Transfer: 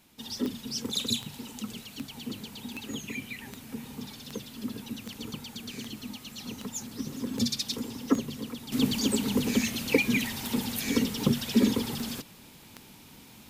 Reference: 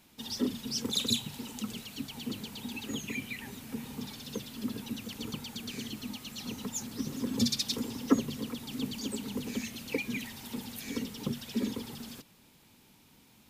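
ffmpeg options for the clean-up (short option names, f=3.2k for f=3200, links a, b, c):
-af "adeclick=t=4,agate=range=-21dB:threshold=-42dB,asetnsamples=n=441:p=0,asendcmd='8.72 volume volume -9.5dB',volume=0dB"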